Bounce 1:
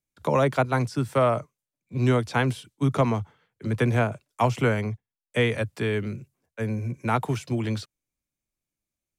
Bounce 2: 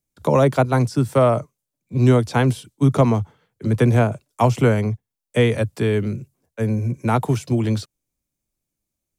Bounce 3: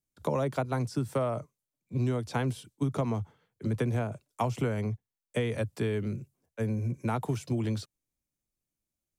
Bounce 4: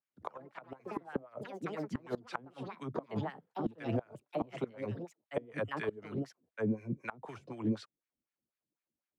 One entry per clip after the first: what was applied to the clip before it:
peaking EQ 2 kHz -7 dB 2.3 oct; trim +7.5 dB
compression, threshold -18 dBFS, peak gain reduction 8.5 dB; trim -7.5 dB
wah-wah 4 Hz 220–2000 Hz, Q 2; ever faster or slower copies 92 ms, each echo +4 st, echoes 3, each echo -6 dB; inverted gate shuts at -27 dBFS, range -24 dB; trim +5 dB

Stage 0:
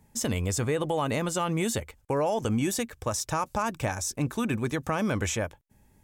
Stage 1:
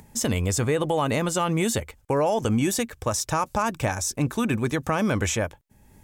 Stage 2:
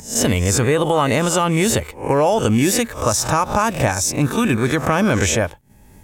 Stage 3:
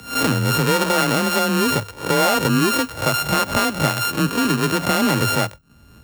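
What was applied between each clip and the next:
upward compressor, threshold -48 dBFS; trim +4 dB
reverse spectral sustain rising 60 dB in 0.37 s; trim +6 dB
sorted samples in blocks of 32 samples; frequency shift +27 Hz; trim -1.5 dB

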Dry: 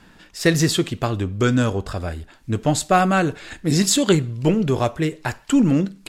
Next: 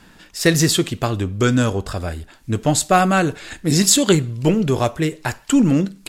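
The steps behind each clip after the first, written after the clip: treble shelf 6 kHz +6.5 dB; trim +1.5 dB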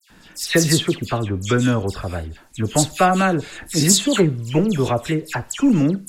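phase dispersion lows, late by 101 ms, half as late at 2.8 kHz; trim -1 dB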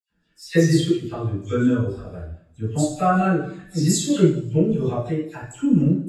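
two-slope reverb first 0.75 s, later 2.1 s, DRR -7.5 dB; spectral contrast expander 1.5:1; trim -7.5 dB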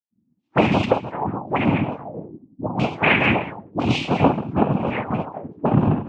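noise-vocoded speech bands 4; touch-sensitive low-pass 230–2500 Hz up, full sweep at -19 dBFS; trim -1 dB

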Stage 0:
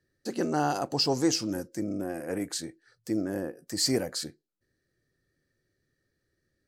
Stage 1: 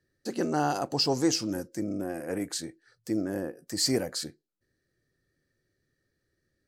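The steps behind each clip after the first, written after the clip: no audible change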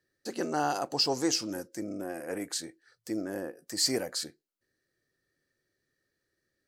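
bass shelf 240 Hz -11.5 dB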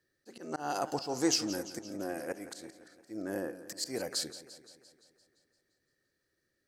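slow attack 236 ms; modulated delay 172 ms, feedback 61%, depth 95 cents, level -14.5 dB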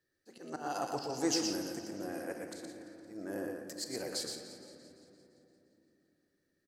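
delay 119 ms -5 dB; on a send at -7 dB: reverberation RT60 3.3 s, pre-delay 6 ms; on the sum: trim -4.5 dB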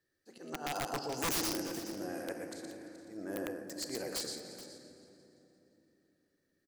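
integer overflow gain 27.5 dB; delay 426 ms -14.5 dB

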